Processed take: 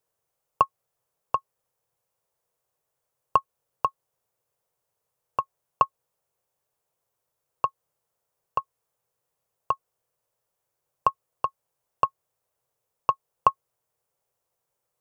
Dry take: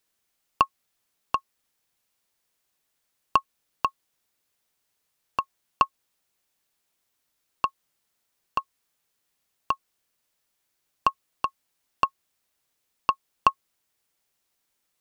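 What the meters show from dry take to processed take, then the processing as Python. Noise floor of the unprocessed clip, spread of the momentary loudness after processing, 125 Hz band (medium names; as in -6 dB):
-77 dBFS, 7 LU, +2.5 dB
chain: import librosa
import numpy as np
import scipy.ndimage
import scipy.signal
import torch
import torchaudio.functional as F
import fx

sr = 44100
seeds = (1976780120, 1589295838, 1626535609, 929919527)

y = fx.graphic_eq(x, sr, hz=(125, 250, 500, 1000, 2000, 4000), db=(12, -9, 12, 5, -4, -6))
y = F.gain(torch.from_numpy(y), -5.0).numpy()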